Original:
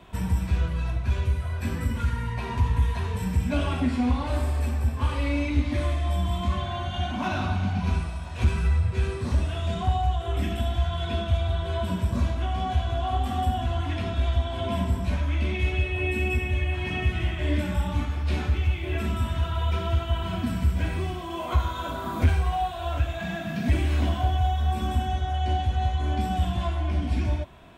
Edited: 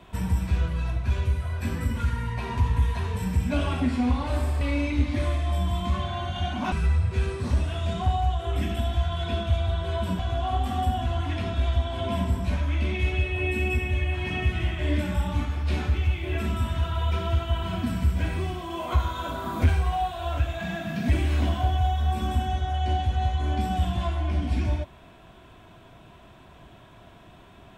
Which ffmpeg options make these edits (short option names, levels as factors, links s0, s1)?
-filter_complex "[0:a]asplit=4[s0][s1][s2][s3];[s0]atrim=end=4.612[s4];[s1]atrim=start=5.188:end=7.302[s5];[s2]atrim=start=8.528:end=12.002[s6];[s3]atrim=start=12.788[s7];[s4][s5]acrossfade=d=0.004:c1=hsin:c2=hsin[s8];[s8][s6]acrossfade=d=0.004:c1=hsin:c2=hsin[s9];[s9][s7]acrossfade=d=0.004:c1=hsin:c2=hsin"